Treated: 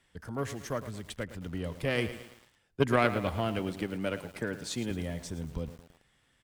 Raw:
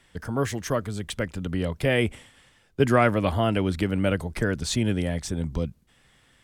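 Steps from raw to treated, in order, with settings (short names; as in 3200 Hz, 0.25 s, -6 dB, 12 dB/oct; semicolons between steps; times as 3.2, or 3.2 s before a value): 3.59–4.91 HPF 160 Hz 12 dB/oct; added harmonics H 3 -16 dB, 4 -28 dB, 7 -44 dB, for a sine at -6.5 dBFS; on a send: echo 80 ms -23 dB; on the sum: lo-fi delay 0.111 s, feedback 55%, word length 7-bit, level -12 dB; gain -3 dB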